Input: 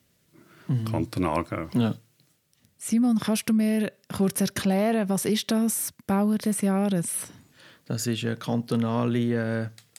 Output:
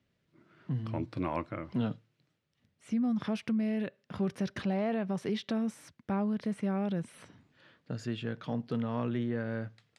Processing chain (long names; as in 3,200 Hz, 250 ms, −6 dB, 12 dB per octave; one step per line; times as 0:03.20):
low-pass filter 3,300 Hz 12 dB per octave
level −8 dB